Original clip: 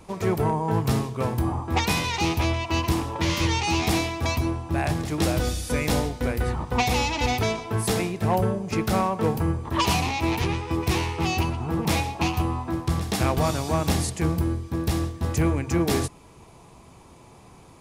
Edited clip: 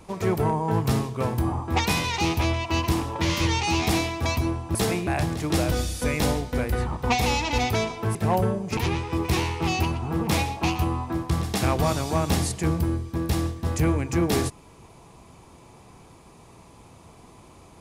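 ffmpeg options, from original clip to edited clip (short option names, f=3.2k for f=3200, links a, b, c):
-filter_complex "[0:a]asplit=5[a][b][c][d][e];[a]atrim=end=4.752[f];[b]atrim=start=7.828:end=8.152[g];[c]atrim=start=4.748:end=7.832[h];[d]atrim=start=8.148:end=8.772[i];[e]atrim=start=10.348[j];[f][g]acrossfade=d=0.004:c1=hsin:c2=hsin[k];[k][h]acrossfade=d=0.004:c1=hsin:c2=hsin[l];[l][i]acrossfade=d=0.004:c1=hsin:c2=hsin[m];[m][j]acrossfade=d=0.004:c1=hsin:c2=hsin"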